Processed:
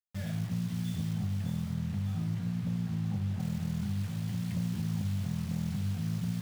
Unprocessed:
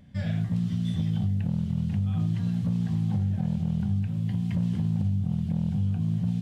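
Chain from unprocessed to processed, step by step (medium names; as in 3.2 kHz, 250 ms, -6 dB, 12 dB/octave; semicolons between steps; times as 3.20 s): de-hum 51.88 Hz, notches 3; bit crusher 7-bit; 1.13–3.40 s: treble shelf 3.7 kHz -10.5 dB; feedback echo behind a high-pass 605 ms, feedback 50%, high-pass 3 kHz, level -4 dB; trim -6 dB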